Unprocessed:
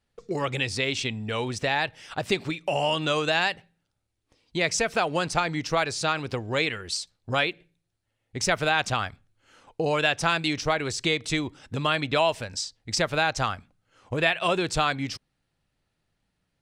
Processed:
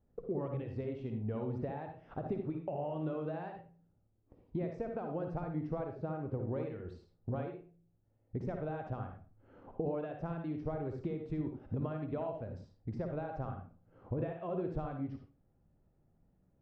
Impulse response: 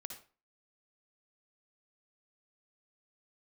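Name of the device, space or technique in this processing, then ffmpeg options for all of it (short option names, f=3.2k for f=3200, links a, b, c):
television next door: -filter_complex "[0:a]asettb=1/sr,asplit=3[a][b][c];[a]atrim=end=5.844[d];[b]atrim=start=5.84:end=6.39,asetpts=PTS-STARTPTS,afade=t=in:d=0.004:c=qsin,afade=t=out:st=0.546:d=0.004:c=qsin,lowpass=f=1.7k:p=1[e];[c]atrim=start=6.386[f];[d][e]acrossfade=d=0.004:c1=hsin:c2=qsin[g];[g][f]acrossfade=d=0.004:c1=qsin:c2=hsin,acompressor=threshold=-43dB:ratio=3,lowpass=570[h];[1:a]atrim=start_sample=2205[i];[h][i]afir=irnorm=-1:irlink=0,volume=10.5dB"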